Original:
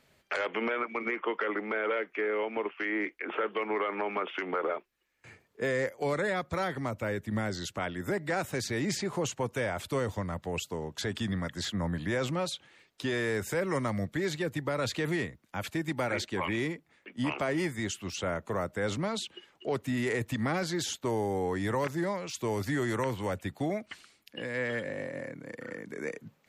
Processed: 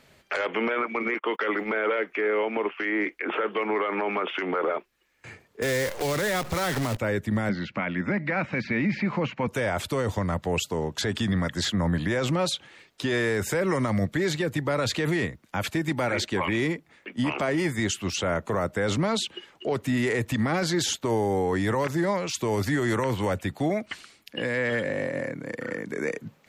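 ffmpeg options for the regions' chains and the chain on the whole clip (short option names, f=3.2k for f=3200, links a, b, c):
-filter_complex "[0:a]asettb=1/sr,asplit=3[a][b][c];[a]atrim=end=1.144[d];[b]atrim=start=1.14:end=1.7,asetpts=PTS-STARTPTS,afade=t=in:d=0.004:c=qsin,afade=t=out:st=0.556:d=0.004:c=qsin,aemphasis=mode=production:type=75kf,agate=range=-34dB:threshold=-38dB:ratio=16:release=100:detection=peak[e];[c]atrim=start=1.696[f];[d][e]acrossfade=d=0.004:c1=hsin:c2=qsin[g];[g][f]acrossfade=d=0.004:c1=qsin:c2=hsin,asettb=1/sr,asplit=3[h][i][j];[h]atrim=end=5.624[k];[i]atrim=start=5.62:end=6.97,asetpts=PTS-STARTPTS,afade=t=in:d=0.004:c=qsin,afade=t=out:st=1.346:d=0.004:c=qsin,aeval=exprs='val(0)+0.5*0.0126*sgn(val(0))':c=same,acrusher=bits=7:dc=4:mix=0:aa=0.000001,acrossover=split=120|3000[l][m][n];[m]acompressor=threshold=-33dB:ratio=3:attack=3.2:release=140:knee=2.83:detection=peak[o];[l][o][n]amix=inputs=3:normalize=0[p];[j]atrim=start=6.966[q];[k][p]acrossfade=d=0.004:c1=hsin:c2=qsin[r];[r][q]acrossfade=d=0.004:c1=qsin:c2=hsin,asettb=1/sr,asplit=3[s][t][u];[s]atrim=end=7.494[v];[t]atrim=start=7.49:end=9.48,asetpts=PTS-STARTPTS,afade=t=in:d=0.004:c=qsin,afade=t=out:st=1.986:d=0.004:c=qsin,acrossover=split=2900[w][x];[x]acompressor=threshold=-50dB:ratio=4:attack=1:release=60[y];[w][y]amix=inputs=2:normalize=0,highpass=100,equalizer=f=100:t=q:w=4:g=-8,equalizer=f=210:t=q:w=4:g=8,equalizer=f=400:t=q:w=4:g=-9,equalizer=f=720:t=q:w=4:g=-4,equalizer=f=2.3k:t=q:w=4:g=9,equalizer=f=3.5k:t=q:w=4:g=-7,lowpass=f=4.4k:w=0.5412,lowpass=f=4.4k:w=1.3066[z];[u]atrim=start=9.476[aa];[v][z]acrossfade=d=0.004:c1=hsin:c2=qsin[ab];[ab][aa]acrossfade=d=0.004:c1=qsin:c2=hsin,highshelf=f=11k:g=-4,alimiter=level_in=2dB:limit=-24dB:level=0:latency=1:release=27,volume=-2dB,volume=8.5dB"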